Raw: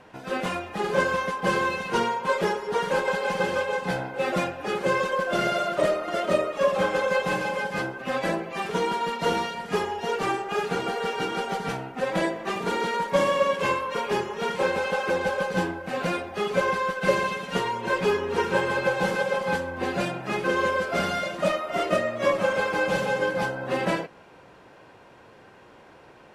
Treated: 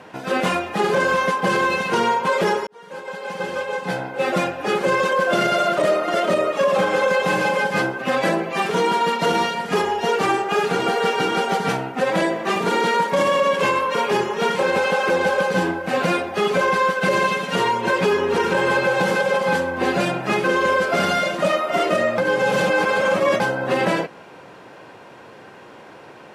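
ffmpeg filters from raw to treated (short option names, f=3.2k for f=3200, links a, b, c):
-filter_complex "[0:a]asplit=4[a][b][c][d];[a]atrim=end=2.67,asetpts=PTS-STARTPTS,afade=t=out:st=2.666:d=0.004:c=hsin[e];[b]atrim=start=2.67:end=22.182,asetpts=PTS-STARTPTS,afade=t=in:d=2.38[f];[c]atrim=start=22.178:end=23.402,asetpts=PTS-STARTPTS,areverse[g];[d]atrim=start=23.398[h];[e][f]concat=n=2:v=0:a=1[i];[i][g]acrossfade=d=0.004:c1=hsin:c2=hsin[j];[j][h]acrossfade=d=0.004:c1=hsin:c2=hsin,highpass=120,alimiter=level_in=17.5dB:limit=-1dB:release=50:level=0:latency=1,volume=-9dB"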